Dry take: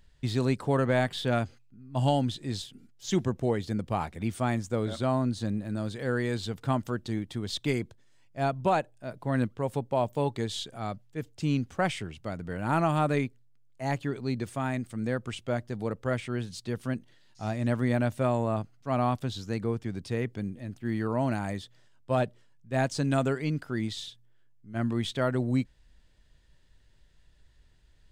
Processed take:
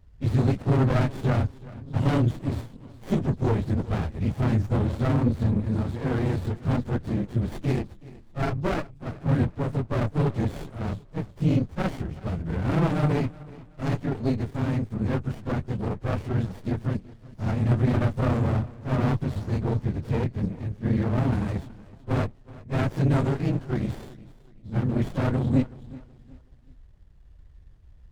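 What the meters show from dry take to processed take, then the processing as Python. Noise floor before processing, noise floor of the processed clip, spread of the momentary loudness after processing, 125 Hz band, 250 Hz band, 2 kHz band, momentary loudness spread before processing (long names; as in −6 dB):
−59 dBFS, −51 dBFS, 10 LU, +7.5 dB, +4.0 dB, −1.0 dB, 10 LU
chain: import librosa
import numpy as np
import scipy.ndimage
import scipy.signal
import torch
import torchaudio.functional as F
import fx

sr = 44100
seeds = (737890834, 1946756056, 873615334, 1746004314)

y = fx.phase_scramble(x, sr, seeds[0], window_ms=50)
y = scipy.signal.sosfilt(scipy.signal.butter(2, 8600.0, 'lowpass', fs=sr, output='sos'), y)
y = fx.low_shelf(y, sr, hz=150.0, db=10.5)
y = fx.cheby_harmonics(y, sr, harmonics=(5,), levels_db=(-23,), full_scale_db=-9.0)
y = fx.echo_feedback(y, sr, ms=374, feedback_pct=34, wet_db=-20.0)
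y = fx.running_max(y, sr, window=33)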